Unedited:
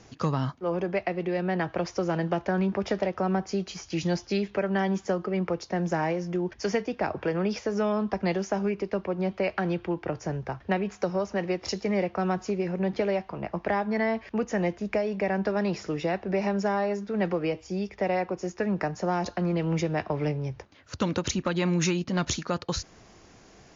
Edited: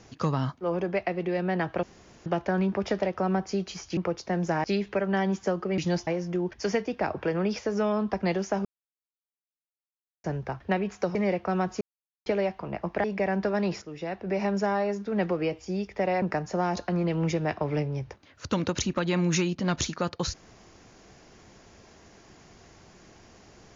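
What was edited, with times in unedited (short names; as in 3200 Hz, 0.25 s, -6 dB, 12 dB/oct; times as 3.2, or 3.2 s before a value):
1.83–2.26 room tone
3.97–4.26 swap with 5.4–6.07
8.65–10.24 mute
11.15–11.85 cut
12.51–12.96 mute
13.74–15.06 cut
15.84–16.5 fade in, from -13.5 dB
18.24–18.71 cut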